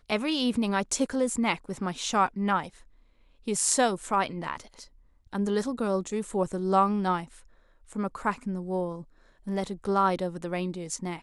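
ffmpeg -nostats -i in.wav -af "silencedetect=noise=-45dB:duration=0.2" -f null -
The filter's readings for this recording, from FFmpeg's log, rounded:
silence_start: 2.82
silence_end: 3.47 | silence_duration: 0.65
silence_start: 4.87
silence_end: 5.27 | silence_duration: 0.40
silence_start: 7.40
silence_end: 7.89 | silence_duration: 0.49
silence_start: 9.04
silence_end: 9.47 | silence_duration: 0.43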